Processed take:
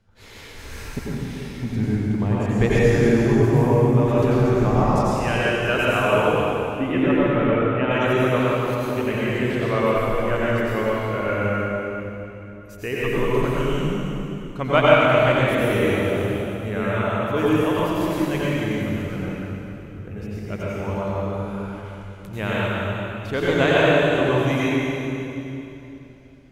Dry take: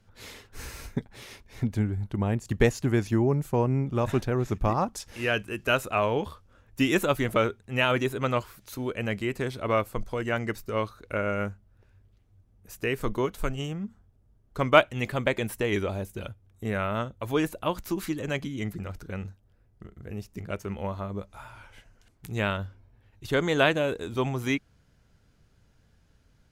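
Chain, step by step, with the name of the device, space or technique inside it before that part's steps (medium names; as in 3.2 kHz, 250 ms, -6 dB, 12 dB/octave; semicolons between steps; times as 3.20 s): 6.30–7.91 s: distance through air 500 m; swimming-pool hall (reverberation RT60 3.1 s, pre-delay 82 ms, DRR -8 dB; treble shelf 5.3 kHz -7 dB); trim -1 dB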